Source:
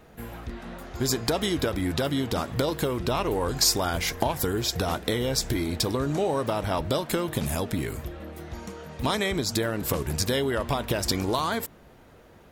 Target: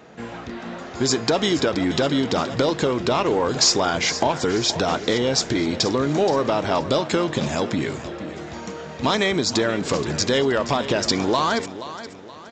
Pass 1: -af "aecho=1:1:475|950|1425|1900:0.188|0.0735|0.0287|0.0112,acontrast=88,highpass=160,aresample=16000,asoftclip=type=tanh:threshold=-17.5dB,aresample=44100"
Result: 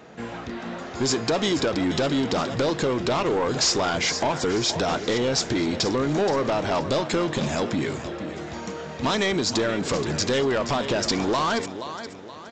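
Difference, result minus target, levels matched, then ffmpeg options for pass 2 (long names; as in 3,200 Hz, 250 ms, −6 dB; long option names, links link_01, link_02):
soft clipping: distortion +11 dB
-af "aecho=1:1:475|950|1425|1900:0.188|0.0735|0.0287|0.0112,acontrast=88,highpass=160,aresample=16000,asoftclip=type=tanh:threshold=-8dB,aresample=44100"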